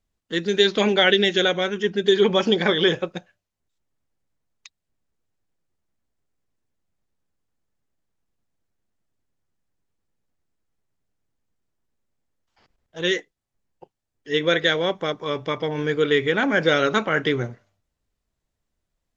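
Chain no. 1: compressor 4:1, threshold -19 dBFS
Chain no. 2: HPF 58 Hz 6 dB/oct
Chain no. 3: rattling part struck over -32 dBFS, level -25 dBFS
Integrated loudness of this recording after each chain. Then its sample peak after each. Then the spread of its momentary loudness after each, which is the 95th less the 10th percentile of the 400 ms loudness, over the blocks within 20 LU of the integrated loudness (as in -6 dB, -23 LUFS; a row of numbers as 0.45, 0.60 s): -24.5, -21.0, -21.0 LUFS; -8.0, -4.5, -4.0 dBFS; 7, 10, 9 LU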